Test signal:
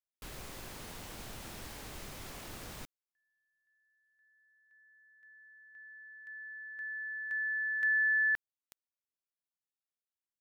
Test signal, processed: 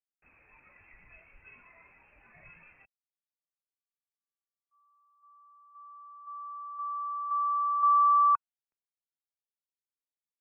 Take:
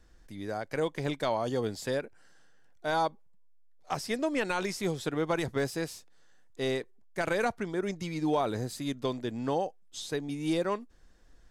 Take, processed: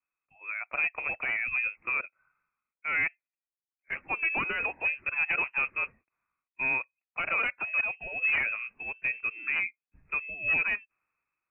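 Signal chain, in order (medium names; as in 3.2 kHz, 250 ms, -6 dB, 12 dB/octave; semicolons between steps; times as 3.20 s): in parallel at -2 dB: compression 6:1, threshold -42 dBFS; on the sum: gate with hold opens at -56 dBFS, range -20 dB; resonant high-pass 340 Hz, resonance Q 3.4; spectral noise reduction 12 dB; tilt shelf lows -6.5 dB, about 840 Hz; wavefolder -19 dBFS; frequency inversion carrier 2.9 kHz; three bands expanded up and down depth 40%; trim -2.5 dB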